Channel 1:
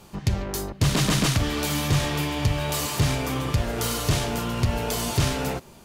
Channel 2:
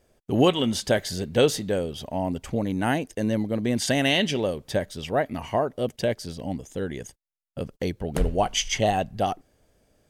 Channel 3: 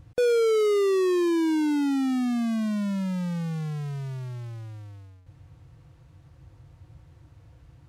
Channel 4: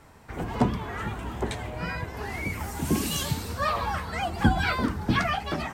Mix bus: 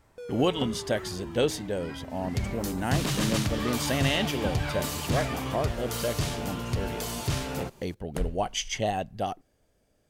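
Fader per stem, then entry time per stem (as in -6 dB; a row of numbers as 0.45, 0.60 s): -6.5, -5.5, -19.0, -11.5 dB; 2.10, 0.00, 0.00, 0.00 s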